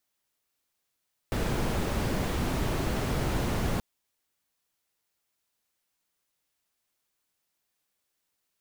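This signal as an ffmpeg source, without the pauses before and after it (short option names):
-f lavfi -i "anoisesrc=c=brown:a=0.186:d=2.48:r=44100:seed=1"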